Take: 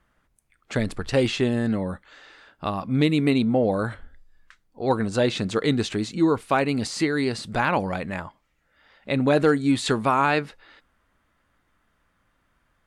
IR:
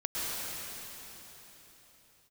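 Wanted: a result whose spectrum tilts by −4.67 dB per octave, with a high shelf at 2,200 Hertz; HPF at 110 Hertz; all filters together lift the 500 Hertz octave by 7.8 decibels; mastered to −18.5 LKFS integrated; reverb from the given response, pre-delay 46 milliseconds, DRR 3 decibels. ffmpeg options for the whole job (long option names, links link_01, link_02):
-filter_complex "[0:a]highpass=110,equalizer=frequency=500:width_type=o:gain=9,highshelf=frequency=2200:gain=3,asplit=2[link_01][link_02];[1:a]atrim=start_sample=2205,adelay=46[link_03];[link_02][link_03]afir=irnorm=-1:irlink=0,volume=-10.5dB[link_04];[link_01][link_04]amix=inputs=2:normalize=0,volume=-0.5dB"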